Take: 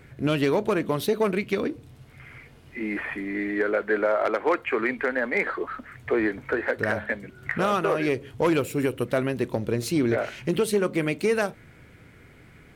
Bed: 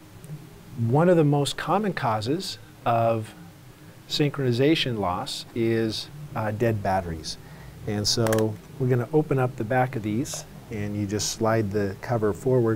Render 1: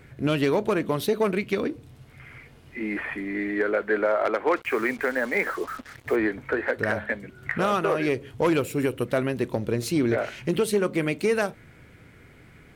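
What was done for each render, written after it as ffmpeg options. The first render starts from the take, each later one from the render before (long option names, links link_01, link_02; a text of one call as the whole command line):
ffmpeg -i in.wav -filter_complex "[0:a]asettb=1/sr,asplit=3[link_01][link_02][link_03];[link_01]atrim=end=4.564[link_04];[link_02]atrim=start=4.56:end=6.16,asetpts=PTS-STARTPTS,afade=type=in:duration=0.004:curve=qsin,afade=type=out:start_time=1.596:duration=0.004:curve=qsin,acrusher=bits=6:mix=0:aa=0.5[link_05];[link_03]atrim=start=6.156[link_06];[link_04][link_05]acrossfade=duration=0.004:curve1=hsin:curve2=qsin[link_07];[link_07][link_06]acrossfade=duration=0.004:curve1=qsin:curve2=hsin" out.wav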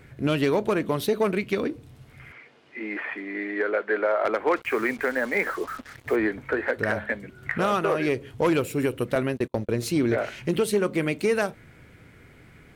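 ffmpeg -i in.wav -filter_complex "[0:a]asettb=1/sr,asplit=3[link_01][link_02][link_03];[link_01]atrim=end=2.324[link_04];[link_02]atrim=start=2.32:end=4.25,asetpts=PTS-STARTPTS,afade=type=in:duration=0.004:curve=qsin,afade=type=out:start_time=1.926:duration=0.004:curve=qsin,highpass=330,lowpass=5200[link_05];[link_03]atrim=start=4.246[link_06];[link_04][link_05]acrossfade=duration=0.004:curve1=hsin:curve2=qsin[link_07];[link_07][link_06]acrossfade=duration=0.004:curve1=qsin:curve2=hsin,asettb=1/sr,asplit=3[link_08][link_09][link_10];[link_08]atrim=end=9.154[link_11];[link_09]atrim=start=9.15:end=9.73,asetpts=PTS-STARTPTS,afade=type=in:duration=0.004:curve=qsin,afade=type=out:start_time=0.576:duration=0.004:curve=qsin,agate=range=-36dB:threshold=-31dB:ratio=16:release=100:detection=peak[link_12];[link_10]atrim=start=9.726[link_13];[link_11][link_12]acrossfade=duration=0.004:curve1=hsin:curve2=qsin[link_14];[link_14][link_13]acrossfade=duration=0.004:curve1=qsin:curve2=hsin" out.wav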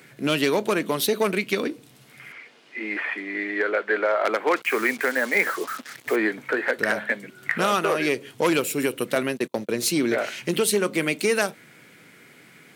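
ffmpeg -i in.wav -af "highpass=frequency=160:width=0.5412,highpass=frequency=160:width=1.3066,highshelf=frequency=2300:gain=11" out.wav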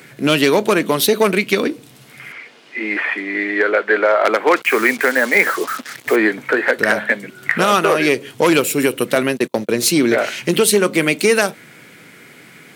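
ffmpeg -i in.wav -af "volume=8dB,alimiter=limit=-1dB:level=0:latency=1" out.wav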